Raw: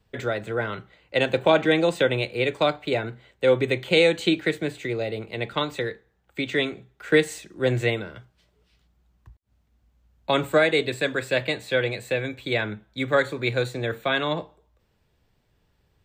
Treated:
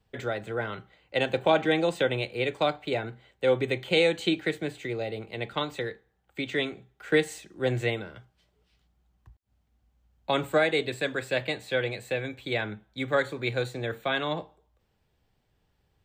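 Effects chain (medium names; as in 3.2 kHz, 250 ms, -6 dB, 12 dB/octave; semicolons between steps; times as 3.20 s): small resonant body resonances 780/3100 Hz, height 6 dB; trim -4.5 dB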